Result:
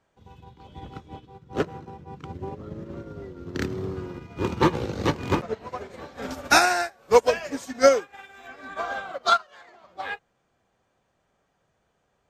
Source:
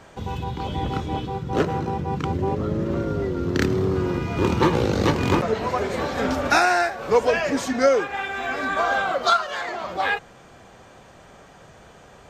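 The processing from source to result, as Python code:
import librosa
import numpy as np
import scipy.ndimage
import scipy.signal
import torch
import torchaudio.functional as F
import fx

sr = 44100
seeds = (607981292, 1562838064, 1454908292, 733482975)

y = fx.high_shelf(x, sr, hz=5900.0, db=12.0, at=(6.22, 8.48))
y = fx.upward_expand(y, sr, threshold_db=-31.0, expansion=2.5)
y = F.gain(torch.from_numpy(y), 3.0).numpy()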